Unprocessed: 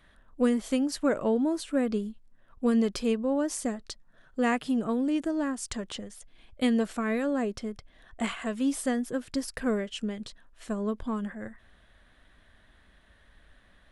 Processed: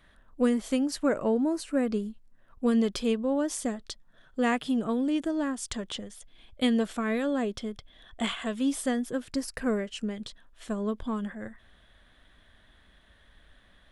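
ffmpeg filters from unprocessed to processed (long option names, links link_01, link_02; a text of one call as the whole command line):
ffmpeg -i in.wav -af "asetnsamples=nb_out_samples=441:pad=0,asendcmd='1.05 equalizer g -9;1.83 equalizer g -2;2.67 equalizer g 7.5;7.15 equalizer g 13.5;8.56 equalizer g 5.5;9.28 equalizer g -5;10.16 equalizer g 6.5',equalizer=frequency=3400:width_type=o:width=0.21:gain=0.5" out.wav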